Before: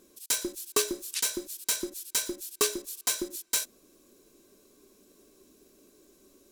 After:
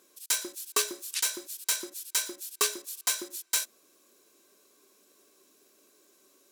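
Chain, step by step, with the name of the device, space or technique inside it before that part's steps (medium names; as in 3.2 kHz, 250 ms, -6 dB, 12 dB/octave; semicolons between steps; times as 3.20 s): filter by subtraction (in parallel: low-pass 1.2 kHz 12 dB/octave + polarity flip)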